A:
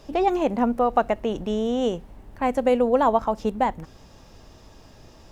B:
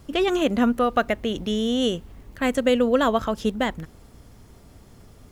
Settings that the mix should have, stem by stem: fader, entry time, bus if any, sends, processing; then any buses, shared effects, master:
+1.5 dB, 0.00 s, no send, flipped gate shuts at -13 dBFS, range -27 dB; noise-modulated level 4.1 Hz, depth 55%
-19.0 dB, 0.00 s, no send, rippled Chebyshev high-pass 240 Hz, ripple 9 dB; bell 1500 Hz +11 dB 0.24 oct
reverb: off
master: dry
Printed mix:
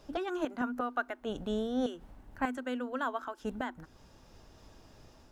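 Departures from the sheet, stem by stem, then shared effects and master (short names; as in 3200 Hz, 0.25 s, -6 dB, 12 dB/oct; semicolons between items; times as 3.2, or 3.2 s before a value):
stem A +1.5 dB -> -6.5 dB; stem B -19.0 dB -> -10.0 dB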